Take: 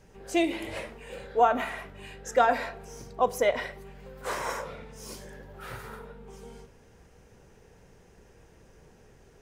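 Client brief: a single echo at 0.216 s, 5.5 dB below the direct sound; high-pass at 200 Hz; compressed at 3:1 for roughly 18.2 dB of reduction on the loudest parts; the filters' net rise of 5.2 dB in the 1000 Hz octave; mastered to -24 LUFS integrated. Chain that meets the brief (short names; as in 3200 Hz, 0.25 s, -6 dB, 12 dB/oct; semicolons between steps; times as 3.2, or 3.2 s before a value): HPF 200 Hz; bell 1000 Hz +7.5 dB; compressor 3:1, threshold -39 dBFS; echo 0.216 s -5.5 dB; gain +16 dB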